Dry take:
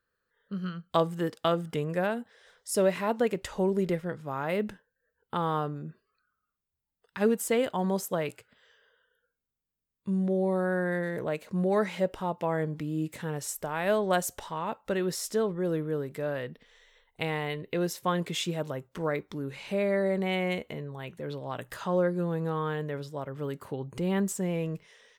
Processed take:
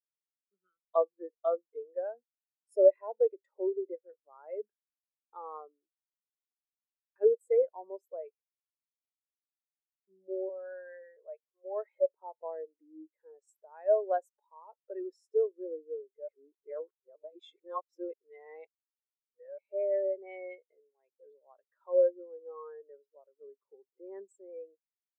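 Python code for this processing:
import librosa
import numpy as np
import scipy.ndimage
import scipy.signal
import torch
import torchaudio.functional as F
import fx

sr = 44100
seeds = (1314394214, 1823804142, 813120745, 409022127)

y = fx.bandpass_edges(x, sr, low_hz=500.0, high_hz=6400.0, at=(10.49, 11.92))
y = fx.edit(y, sr, fx.reverse_span(start_s=16.28, length_s=3.3), tone=tone)
y = scipy.signal.sosfilt(scipy.signal.butter(4, 350.0, 'highpass', fs=sr, output='sos'), y)
y = fx.notch(y, sr, hz=2900.0, q=12.0)
y = fx.spectral_expand(y, sr, expansion=2.5)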